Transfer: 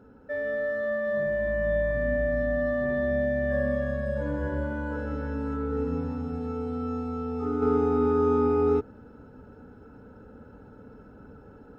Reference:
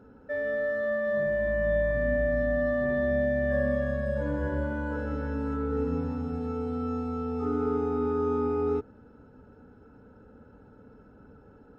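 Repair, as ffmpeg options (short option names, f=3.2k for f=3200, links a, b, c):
-af "asetnsamples=n=441:p=0,asendcmd='7.62 volume volume -4.5dB',volume=0dB"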